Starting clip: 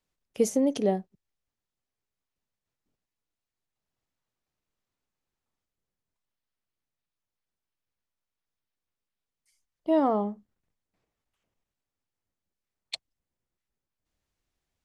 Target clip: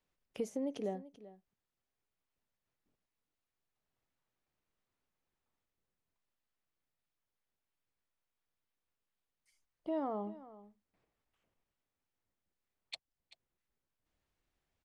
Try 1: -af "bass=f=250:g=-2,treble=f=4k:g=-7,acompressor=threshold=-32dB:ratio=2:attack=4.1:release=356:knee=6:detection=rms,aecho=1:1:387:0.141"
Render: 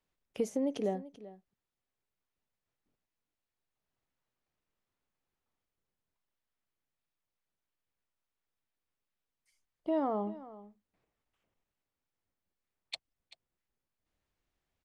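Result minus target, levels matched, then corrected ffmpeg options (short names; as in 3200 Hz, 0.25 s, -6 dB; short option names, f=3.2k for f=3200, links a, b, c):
compressor: peak gain reduction -5 dB
-af "bass=f=250:g=-2,treble=f=4k:g=-7,acompressor=threshold=-42.5dB:ratio=2:attack=4.1:release=356:knee=6:detection=rms,aecho=1:1:387:0.141"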